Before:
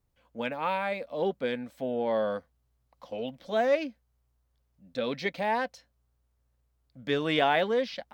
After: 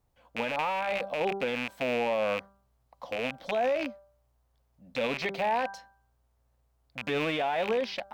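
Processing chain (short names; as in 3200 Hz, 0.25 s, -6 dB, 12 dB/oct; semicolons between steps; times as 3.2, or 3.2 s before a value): rattling part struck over -46 dBFS, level -21 dBFS; bell 770 Hz +7.5 dB 1.1 oct; de-hum 196.4 Hz, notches 8; limiter -23 dBFS, peak gain reduction 14.5 dB; gain +2 dB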